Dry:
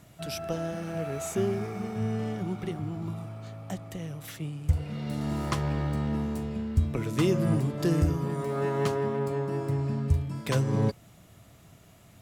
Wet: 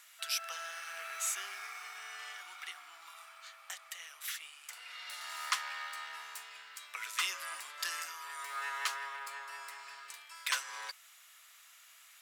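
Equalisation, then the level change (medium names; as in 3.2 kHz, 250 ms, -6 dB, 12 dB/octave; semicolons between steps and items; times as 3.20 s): high-pass 1.3 kHz 24 dB/octave; +4.0 dB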